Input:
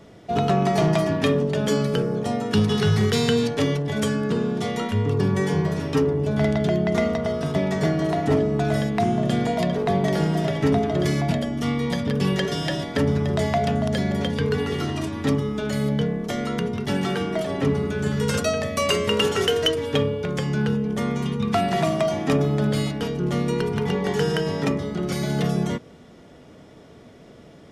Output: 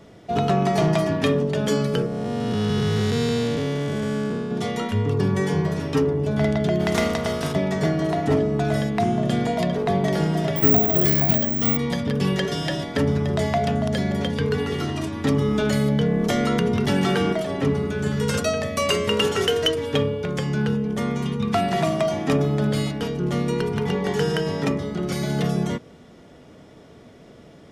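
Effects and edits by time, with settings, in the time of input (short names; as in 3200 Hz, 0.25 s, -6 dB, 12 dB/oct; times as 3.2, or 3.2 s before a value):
2.06–4.51 time blur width 0.408 s
6.79–7.52 spectral contrast lowered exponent 0.7
10.56–11.77 careless resampling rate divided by 2×, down filtered, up zero stuff
15.24–17.33 fast leveller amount 70%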